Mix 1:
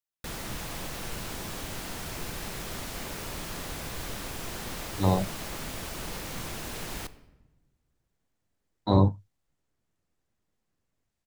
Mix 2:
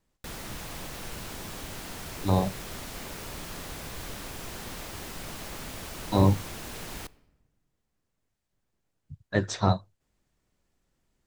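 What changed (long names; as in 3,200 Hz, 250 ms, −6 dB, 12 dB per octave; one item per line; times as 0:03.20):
speech: entry −2.75 s
background: send −8.0 dB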